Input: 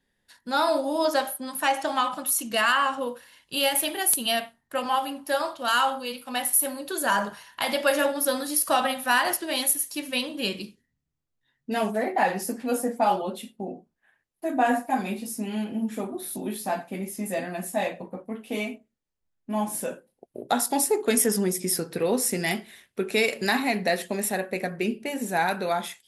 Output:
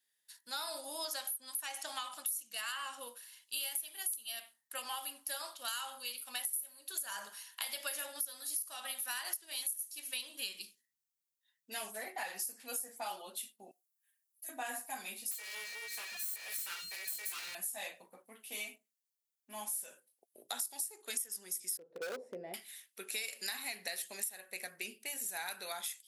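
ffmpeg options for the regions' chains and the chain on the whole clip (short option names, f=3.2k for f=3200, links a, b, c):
-filter_complex "[0:a]asettb=1/sr,asplit=3[a][b][c];[a]atrim=end=13.714[d];[b]atrim=start=13.71:end=14.49,asetpts=PTS-STARTPTS,afade=t=in:d=0.004:c=qsin,afade=t=out:st=0.776:d=0.004:c=qsin,aderivative,aecho=1:1:5.6:0.62,atrim=end_sample=34398[e];[c]atrim=start=14.486[f];[d][e]acrossfade=d=0.004:c1=hsin:c2=qsin[g];[g][f]acrossfade=d=0.004:c1=qsin:c2=hsin,asettb=1/sr,asplit=3[h][i][j];[h]atrim=end=15.314[k];[i]atrim=start=15.31:end=17.55,asetpts=PTS-STARTPTS,afade=t=in:d=0.004:c=qsin,afade=t=out:st=2.236:d=0.004:c=qsin,aeval=exprs='val(0)+0.02*sin(2*PI*2100*n/s)':c=same,aeval=exprs='abs(val(0))':c=same,acrossover=split=250[l][m];[l]adelay=140[n];[n][m]amix=inputs=2:normalize=0,atrim=end_sample=98784[o];[j]atrim=start=17.546[p];[k][o]acrossfade=d=0.004:c1=hsin:c2=qsin[q];[q][p]acrossfade=d=0.004:c1=qsin:c2=hsin,asettb=1/sr,asplit=3[r][s][t];[r]atrim=end=21.774[u];[s]atrim=start=21.77:end=22.54,asetpts=PTS-STARTPTS,afade=t=in:d=0.004:c=qsin,afade=t=out:st=0.766:d=0.004:c=qsin,lowpass=f=540:t=q:w=4.6,lowshelf=f=150:g=6.5,asoftclip=type=hard:threshold=-13dB[v];[t]atrim=start=22.536[w];[u][v]acrossfade=d=0.004:c1=hsin:c2=qsin[x];[x][w]acrossfade=d=0.004:c1=qsin:c2=hsin,aderivative,acompressor=threshold=-38dB:ratio=8,volume=2dB"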